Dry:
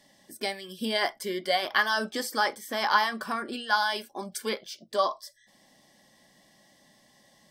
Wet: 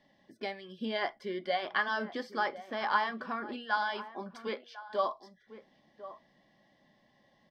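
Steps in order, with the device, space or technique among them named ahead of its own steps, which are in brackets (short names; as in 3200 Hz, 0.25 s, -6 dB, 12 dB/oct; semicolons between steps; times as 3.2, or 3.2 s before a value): shout across a valley (air absorption 260 m; outdoor echo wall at 180 m, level -14 dB); 4.47–4.88 HPF 180 Hz -> 710 Hz 24 dB/oct; gain -4 dB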